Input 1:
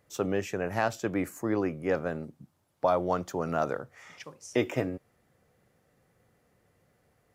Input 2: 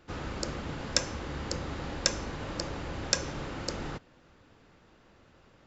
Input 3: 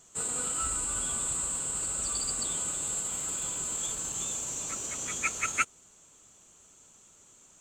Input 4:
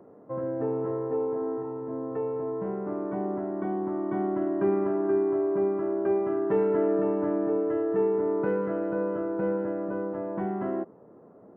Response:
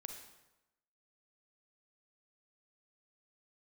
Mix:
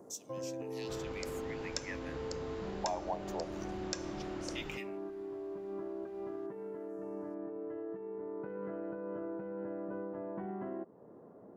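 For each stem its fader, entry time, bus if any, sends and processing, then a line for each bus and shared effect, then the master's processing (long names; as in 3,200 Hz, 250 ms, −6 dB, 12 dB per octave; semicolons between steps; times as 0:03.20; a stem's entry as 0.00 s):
−0.5 dB, 0.00 s, no send, Chebyshev band-stop filter 940–1,900 Hz; auto-filter high-pass saw down 0.29 Hz 560–6,800 Hz
−2.0 dB, 0.80 s, no send, no processing
muted
−5.0 dB, 0.00 s, no send, notch filter 1,300 Hz, Q 18; compressor whose output falls as the input rises −30 dBFS, ratio −1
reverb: not used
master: downward compressor 2 to 1, threshold −43 dBFS, peak gain reduction 13.5 dB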